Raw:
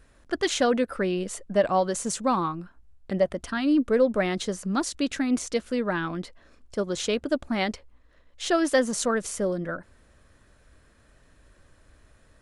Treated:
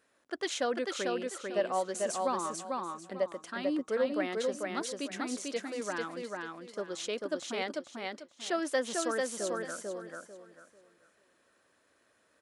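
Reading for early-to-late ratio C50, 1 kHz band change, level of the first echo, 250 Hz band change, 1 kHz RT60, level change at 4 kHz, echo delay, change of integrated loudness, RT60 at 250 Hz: none, -6.0 dB, -3.0 dB, -11.0 dB, none, -6.0 dB, 0.444 s, -8.0 dB, none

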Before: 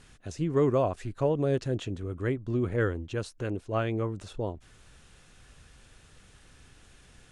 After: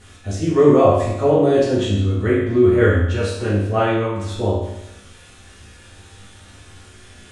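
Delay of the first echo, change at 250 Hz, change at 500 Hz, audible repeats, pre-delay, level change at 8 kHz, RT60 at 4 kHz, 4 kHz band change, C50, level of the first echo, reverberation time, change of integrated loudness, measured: none, +13.0 dB, +13.5 dB, none, 4 ms, +12.5 dB, 0.85 s, +14.0 dB, 1.0 dB, none, 0.90 s, +13.0 dB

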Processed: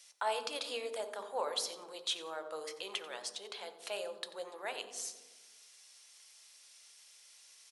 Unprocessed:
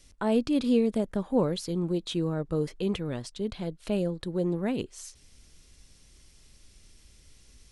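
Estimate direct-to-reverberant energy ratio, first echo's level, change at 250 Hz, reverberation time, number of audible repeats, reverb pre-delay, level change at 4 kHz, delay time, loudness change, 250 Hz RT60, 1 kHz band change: 7.5 dB, -16.0 dB, -30.0 dB, 1.3 s, 1, 3 ms, +1.5 dB, 90 ms, -10.5 dB, 1.5 s, -0.5 dB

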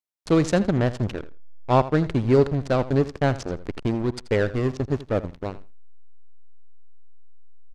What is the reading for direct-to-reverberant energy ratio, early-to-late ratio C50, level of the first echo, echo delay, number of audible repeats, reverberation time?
none, none, -16.0 dB, 82 ms, 2, none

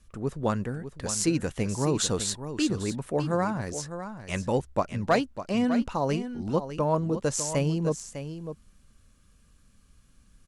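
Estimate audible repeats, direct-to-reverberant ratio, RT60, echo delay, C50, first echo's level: 1, none, none, 0.602 s, none, -10.5 dB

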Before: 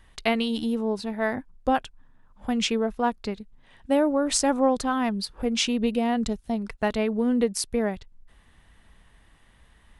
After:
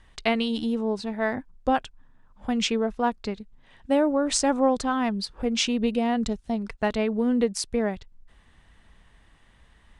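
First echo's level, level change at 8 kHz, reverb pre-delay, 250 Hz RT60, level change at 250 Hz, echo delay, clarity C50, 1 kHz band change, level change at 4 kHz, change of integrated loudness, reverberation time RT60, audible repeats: none, -1.0 dB, none, none, 0.0 dB, none, none, 0.0 dB, 0.0 dB, 0.0 dB, none, none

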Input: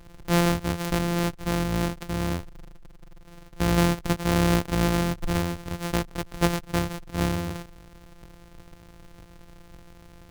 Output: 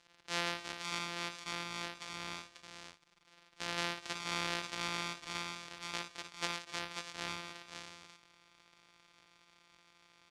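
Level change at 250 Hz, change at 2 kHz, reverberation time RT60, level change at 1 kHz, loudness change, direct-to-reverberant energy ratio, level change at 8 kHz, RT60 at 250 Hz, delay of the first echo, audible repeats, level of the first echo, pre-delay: -23.5 dB, -7.0 dB, none, -11.0 dB, -13.5 dB, none, -9.5 dB, none, 58 ms, 3, -8.0 dB, none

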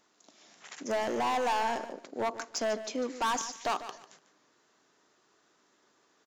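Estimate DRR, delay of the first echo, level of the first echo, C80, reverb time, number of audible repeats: none, 0.147 s, -13.0 dB, none, none, 2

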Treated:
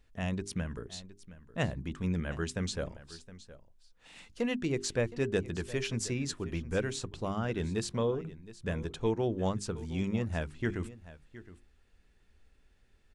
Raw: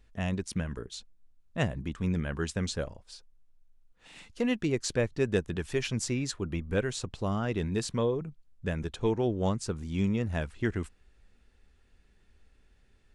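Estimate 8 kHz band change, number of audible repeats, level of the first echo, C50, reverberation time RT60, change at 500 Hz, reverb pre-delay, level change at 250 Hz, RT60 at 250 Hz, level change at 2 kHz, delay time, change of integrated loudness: -2.0 dB, 1, -17.0 dB, none, none, -2.5 dB, none, -3.0 dB, none, -2.0 dB, 0.716 s, -2.5 dB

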